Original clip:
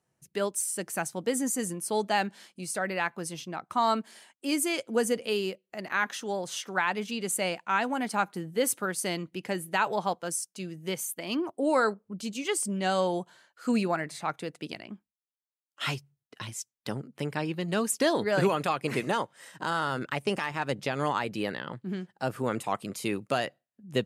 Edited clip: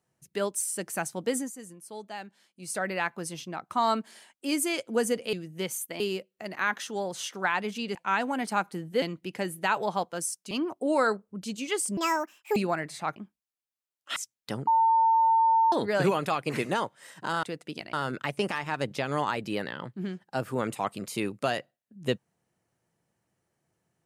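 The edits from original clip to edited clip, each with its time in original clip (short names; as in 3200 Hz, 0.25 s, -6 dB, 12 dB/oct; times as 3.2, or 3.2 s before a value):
1.36–2.72 dip -13 dB, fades 0.15 s
7.28–7.57 cut
8.64–9.12 cut
10.61–11.28 move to 5.33
12.74–13.77 speed 174%
14.37–14.87 move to 19.81
15.87–16.54 cut
17.05–18.1 bleep 902 Hz -18.5 dBFS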